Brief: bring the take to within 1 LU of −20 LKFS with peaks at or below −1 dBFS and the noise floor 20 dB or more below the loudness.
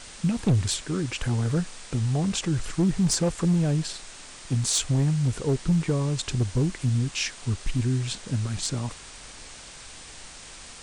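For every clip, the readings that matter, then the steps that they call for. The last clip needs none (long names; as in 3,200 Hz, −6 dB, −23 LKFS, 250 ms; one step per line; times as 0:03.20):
share of clipped samples 0.9%; peaks flattened at −16.5 dBFS; background noise floor −44 dBFS; target noise floor −46 dBFS; integrated loudness −26.0 LKFS; sample peak −16.5 dBFS; target loudness −20.0 LKFS
→ clipped peaks rebuilt −16.5 dBFS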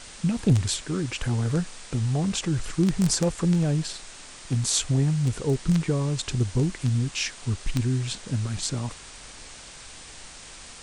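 share of clipped samples 0.0%; background noise floor −44 dBFS; target noise floor −46 dBFS
→ broadband denoise 6 dB, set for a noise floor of −44 dBFS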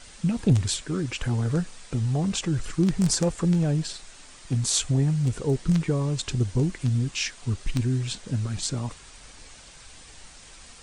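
background noise floor −48 dBFS; integrated loudness −26.0 LKFS; sample peak −8.0 dBFS; target loudness −20.0 LKFS
→ level +6 dB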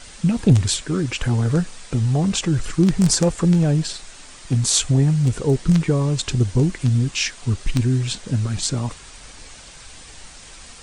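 integrated loudness −20.0 LKFS; sample peak −2.0 dBFS; background noise floor −42 dBFS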